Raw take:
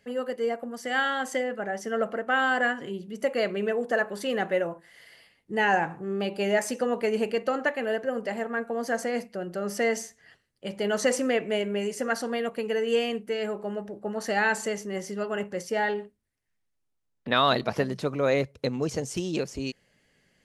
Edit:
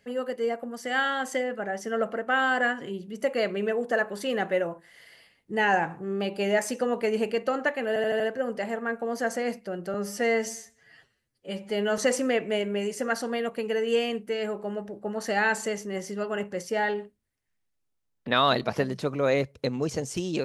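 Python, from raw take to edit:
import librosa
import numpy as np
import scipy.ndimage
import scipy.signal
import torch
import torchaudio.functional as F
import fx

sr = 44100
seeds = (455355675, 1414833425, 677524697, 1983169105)

y = fx.edit(x, sr, fx.stutter(start_s=7.88, slice_s=0.08, count=5),
    fx.stretch_span(start_s=9.62, length_s=1.36, factor=1.5), tone=tone)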